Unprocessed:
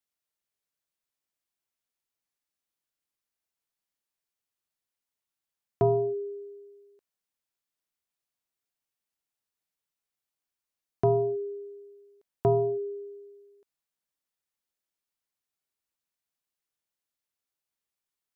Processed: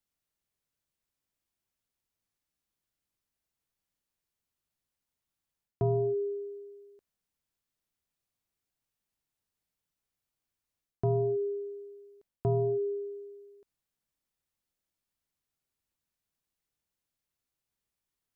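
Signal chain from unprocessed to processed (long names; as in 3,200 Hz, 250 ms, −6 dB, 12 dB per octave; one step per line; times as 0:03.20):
reversed playback
downward compressor 6 to 1, threshold −31 dBFS, peak gain reduction 11.5 dB
reversed playback
low-shelf EQ 240 Hz +12 dB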